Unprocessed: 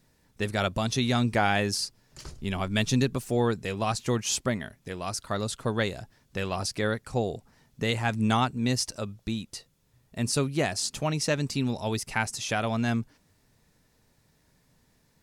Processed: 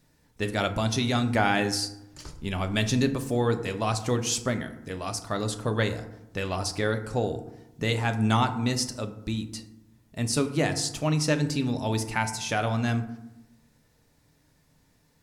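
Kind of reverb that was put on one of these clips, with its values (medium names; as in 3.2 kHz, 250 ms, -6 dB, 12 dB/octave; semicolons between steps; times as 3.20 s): FDN reverb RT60 0.89 s, low-frequency decay 1.35×, high-frequency decay 0.45×, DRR 7 dB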